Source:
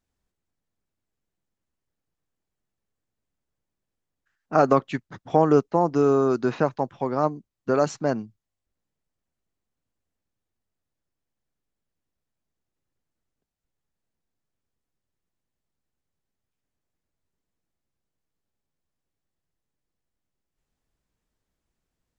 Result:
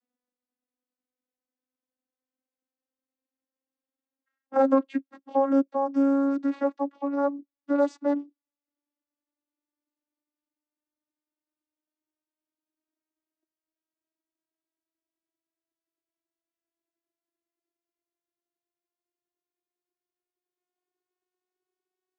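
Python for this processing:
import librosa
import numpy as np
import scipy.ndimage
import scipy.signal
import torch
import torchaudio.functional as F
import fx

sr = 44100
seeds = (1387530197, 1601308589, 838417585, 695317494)

y = fx.vocoder_glide(x, sr, note=59, semitones=7)
y = scipy.signal.sosfilt(scipy.signal.butter(2, 270.0, 'highpass', fs=sr, output='sos'), y)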